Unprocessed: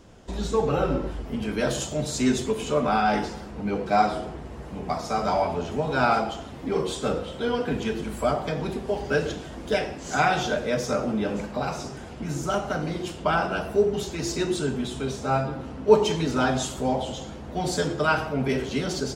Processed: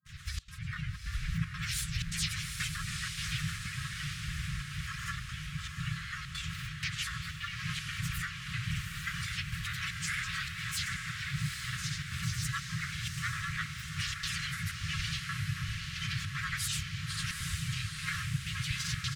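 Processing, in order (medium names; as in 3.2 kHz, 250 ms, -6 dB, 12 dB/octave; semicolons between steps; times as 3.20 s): RIAA curve recording; granulator, pitch spread up and down by 7 st; tone controls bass +9 dB, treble -12 dB; compression 4:1, threshold -34 dBFS, peak gain reduction 18.5 dB; peak limiter -32 dBFS, peak gain reduction 11 dB; small resonant body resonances 260/390 Hz, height 7 dB, ringing for 20 ms; FFT band-reject 170–1600 Hz; harmony voices -7 st -8 dB, -4 st -3 dB, +3 st -12 dB; trance gate "xxxx.xxxxx." 156 bpm -24 dB; echo that smears into a reverb 824 ms, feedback 59%, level -4.5 dB; trim +7 dB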